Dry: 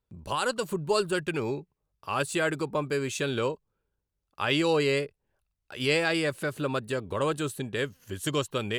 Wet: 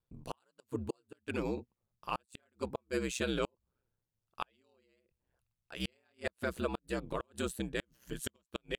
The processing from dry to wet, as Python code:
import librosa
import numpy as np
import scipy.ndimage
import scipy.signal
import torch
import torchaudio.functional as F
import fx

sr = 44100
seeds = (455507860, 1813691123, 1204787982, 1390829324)

y = fx.gate_flip(x, sr, shuts_db=-18.0, range_db=-42)
y = y * np.sin(2.0 * np.pi * 63.0 * np.arange(len(y)) / sr)
y = y * 10.0 ** (-2.0 / 20.0)